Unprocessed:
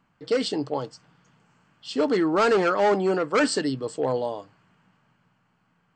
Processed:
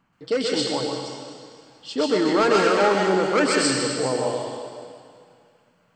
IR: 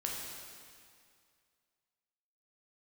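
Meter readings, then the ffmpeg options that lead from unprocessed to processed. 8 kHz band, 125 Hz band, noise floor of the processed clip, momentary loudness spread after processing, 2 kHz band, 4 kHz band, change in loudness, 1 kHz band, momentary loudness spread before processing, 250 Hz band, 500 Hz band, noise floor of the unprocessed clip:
+8.5 dB, +2.5 dB, −63 dBFS, 17 LU, +4.5 dB, +7.0 dB, +2.5 dB, +3.0 dB, 12 LU, +2.0 dB, +2.0 dB, −68 dBFS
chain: -filter_complex "[0:a]asplit=2[link_01][link_02];[1:a]atrim=start_sample=2205,highshelf=frequency=2100:gain=12,adelay=128[link_03];[link_02][link_03]afir=irnorm=-1:irlink=0,volume=-5.5dB[link_04];[link_01][link_04]amix=inputs=2:normalize=0"

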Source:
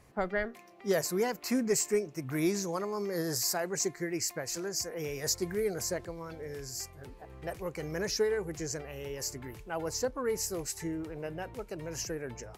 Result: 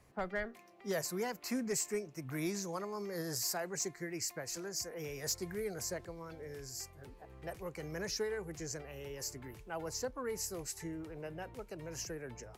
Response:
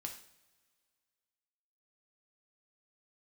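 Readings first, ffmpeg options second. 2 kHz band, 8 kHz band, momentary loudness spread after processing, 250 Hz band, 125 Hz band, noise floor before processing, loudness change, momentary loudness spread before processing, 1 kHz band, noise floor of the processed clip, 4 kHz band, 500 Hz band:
−5.0 dB, −5.0 dB, 11 LU, −7.0 dB, −5.5 dB, −52 dBFS, −6.5 dB, 11 LU, −5.5 dB, −57 dBFS, −5.0 dB, −7.5 dB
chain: -filter_complex "[0:a]acrossover=split=300|450|6600[link_01][link_02][link_03][link_04];[link_02]acompressor=threshold=-47dB:ratio=6[link_05];[link_01][link_05][link_03][link_04]amix=inputs=4:normalize=0,asoftclip=type=hard:threshold=-23dB,volume=-5dB"

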